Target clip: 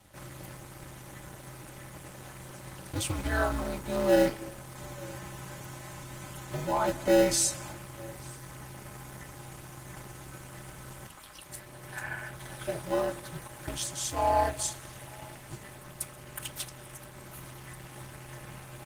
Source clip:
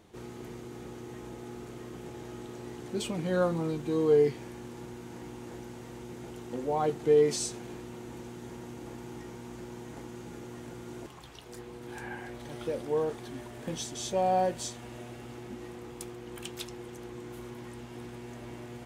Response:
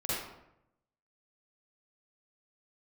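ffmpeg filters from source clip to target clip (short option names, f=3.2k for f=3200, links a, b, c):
-filter_complex "[0:a]highshelf=f=10k:g=10.5,aecho=1:1:4.3:0.97,bandreject=f=51.25:t=h:w=4,bandreject=f=102.5:t=h:w=4,bandreject=f=153.75:t=h:w=4,aeval=exprs='val(0)*sin(2*PI*110*n/s)':c=same,equalizer=f=400:t=o:w=0.67:g=-10,equalizer=f=1.6k:t=o:w=0.67:g=4,equalizer=f=10k:t=o:w=0.67:g=4,acrossover=split=370|2200[a][b][c];[a]acrusher=samples=39:mix=1:aa=0.000001[d];[d][b][c]amix=inputs=3:normalize=0,aecho=1:1:887:0.0708,asplit=2[e][f];[1:a]atrim=start_sample=2205,adelay=126[g];[f][g]afir=irnorm=-1:irlink=0,volume=-26dB[h];[e][h]amix=inputs=2:normalize=0,volume=3.5dB" -ar 48000 -c:a libopus -b:a 20k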